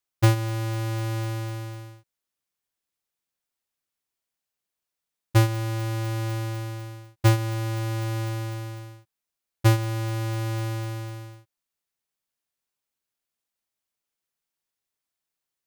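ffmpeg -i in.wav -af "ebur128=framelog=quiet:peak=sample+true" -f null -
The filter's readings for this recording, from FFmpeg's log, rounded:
Integrated loudness:
  I:         -26.8 LUFS
  Threshold: -37.7 LUFS
Loudness range:
  LRA:        11.8 LU
  Threshold: -49.8 LUFS
  LRA low:   -38.6 LUFS
  LRA high:  -26.8 LUFS
Sample peak:
  Peak:      -12.9 dBFS
True peak:
  Peak:      -10.9 dBFS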